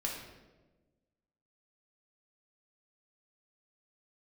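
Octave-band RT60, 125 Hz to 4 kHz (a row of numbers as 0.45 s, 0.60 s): 1.6 s, 1.6 s, 1.4 s, 1.0 s, 0.90 s, 0.80 s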